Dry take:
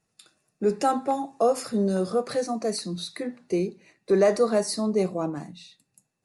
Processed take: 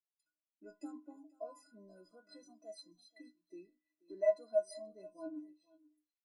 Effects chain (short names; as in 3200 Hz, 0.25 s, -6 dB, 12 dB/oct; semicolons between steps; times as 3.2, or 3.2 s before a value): metallic resonator 300 Hz, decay 0.32 s, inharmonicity 0.03; echo 0.483 s -15 dB; spectral expander 1.5:1; gain +2 dB